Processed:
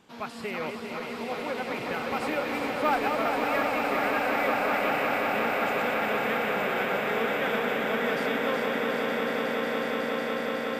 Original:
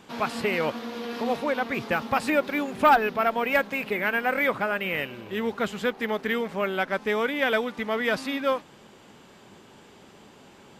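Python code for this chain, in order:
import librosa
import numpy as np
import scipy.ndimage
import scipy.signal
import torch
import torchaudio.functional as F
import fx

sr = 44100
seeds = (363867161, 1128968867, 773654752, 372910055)

y = fx.reverse_delay_fb(x, sr, ms=200, feedback_pct=85, wet_db=-5.5)
y = fx.echo_swell(y, sr, ms=183, loudest=8, wet_db=-8.0)
y = y * librosa.db_to_amplitude(-8.5)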